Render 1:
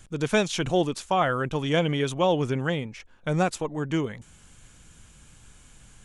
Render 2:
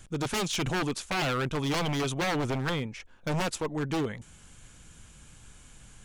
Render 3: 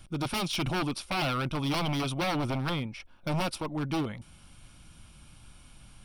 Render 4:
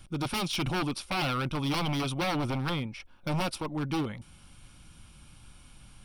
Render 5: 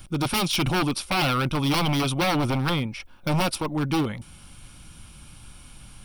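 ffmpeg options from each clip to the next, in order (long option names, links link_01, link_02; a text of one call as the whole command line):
ffmpeg -i in.wav -af "aeval=exprs='0.0708*(abs(mod(val(0)/0.0708+3,4)-2)-1)':channel_layout=same" out.wav
ffmpeg -i in.wav -af "superequalizer=7b=0.447:11b=0.501:15b=0.251" out.wav
ffmpeg -i in.wav -af "bandreject=frequency=650:width=12" out.wav
ffmpeg -i in.wav -af "highshelf=frequency=12000:gain=9,volume=6.5dB" out.wav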